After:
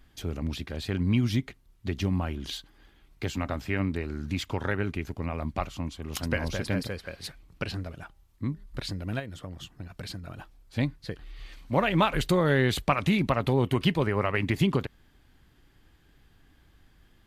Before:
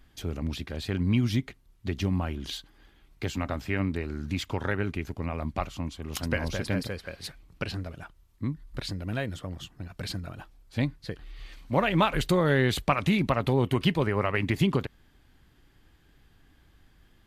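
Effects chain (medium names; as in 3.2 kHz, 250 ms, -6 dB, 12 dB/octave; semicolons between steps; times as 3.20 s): 8.03–8.66 s: de-hum 201.3 Hz, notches 4; 9.19–10.30 s: compression 6:1, threshold -35 dBFS, peak gain reduction 8 dB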